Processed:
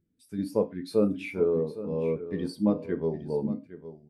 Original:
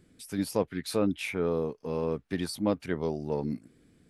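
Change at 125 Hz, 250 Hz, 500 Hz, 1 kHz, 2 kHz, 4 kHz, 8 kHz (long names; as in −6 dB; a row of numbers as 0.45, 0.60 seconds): +1.0 dB, +2.0 dB, +3.0 dB, −4.5 dB, −4.5 dB, −7.5 dB, below −10 dB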